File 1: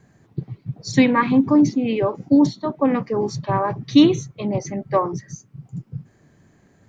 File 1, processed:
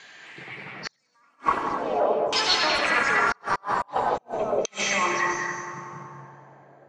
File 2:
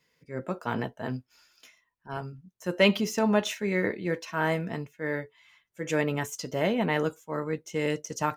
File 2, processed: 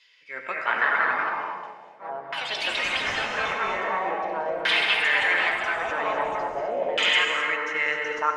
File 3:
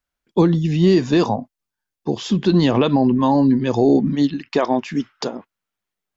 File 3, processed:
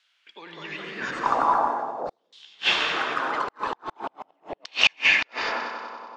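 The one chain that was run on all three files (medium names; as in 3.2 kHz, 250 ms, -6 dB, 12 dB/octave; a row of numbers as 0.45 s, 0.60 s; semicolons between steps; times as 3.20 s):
compressor with a negative ratio -27 dBFS, ratio -1; hum notches 60/120/180/240 Hz; on a send: multi-head delay 94 ms, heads first and second, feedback 67%, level -12.5 dB; on the sum: ever faster or slower copies 263 ms, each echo +3 st, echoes 3; differentiator; gated-style reverb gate 280 ms rising, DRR 1.5 dB; inverted gate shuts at -19 dBFS, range -40 dB; treble shelf 5 kHz +6.5 dB; overdrive pedal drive 14 dB, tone 2.2 kHz, clips at -15 dBFS; LFO low-pass saw down 0.43 Hz 560–3500 Hz; normalise loudness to -24 LUFS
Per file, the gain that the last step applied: +13.0 dB, +11.0 dB, +9.5 dB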